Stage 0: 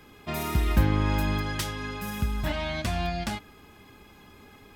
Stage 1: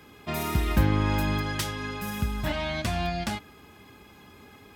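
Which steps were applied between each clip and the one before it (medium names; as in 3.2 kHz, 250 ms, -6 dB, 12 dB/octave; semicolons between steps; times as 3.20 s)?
high-pass 57 Hz; trim +1 dB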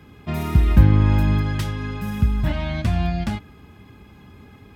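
tone controls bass +11 dB, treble -6 dB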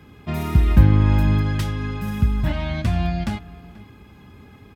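echo from a far wall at 83 m, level -20 dB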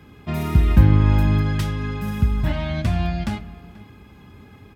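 reverberation RT60 0.95 s, pre-delay 19 ms, DRR 14.5 dB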